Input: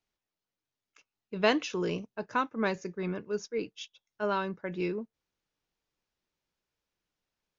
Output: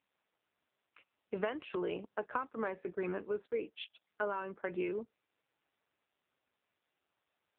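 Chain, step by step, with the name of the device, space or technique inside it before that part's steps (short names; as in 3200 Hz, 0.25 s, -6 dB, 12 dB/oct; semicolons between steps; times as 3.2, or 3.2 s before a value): voicemail (BPF 340–2600 Hz; compressor 10:1, threshold -38 dBFS, peak gain reduction 18.5 dB; gain +6.5 dB; AMR-NB 5.9 kbps 8000 Hz)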